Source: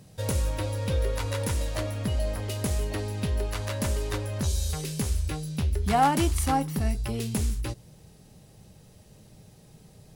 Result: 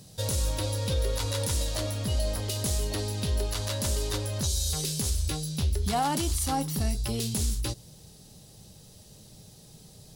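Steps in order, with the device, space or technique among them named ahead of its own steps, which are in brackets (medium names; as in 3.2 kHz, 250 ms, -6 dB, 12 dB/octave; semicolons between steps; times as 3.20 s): over-bright horn tweeter (resonant high shelf 3 kHz +7 dB, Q 1.5; peak limiter -18.5 dBFS, peak gain reduction 9.5 dB)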